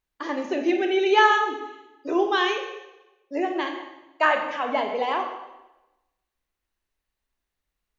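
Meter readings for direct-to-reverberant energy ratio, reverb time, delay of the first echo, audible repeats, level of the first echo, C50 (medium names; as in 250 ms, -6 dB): 4.0 dB, 1.0 s, no echo, no echo, no echo, 6.0 dB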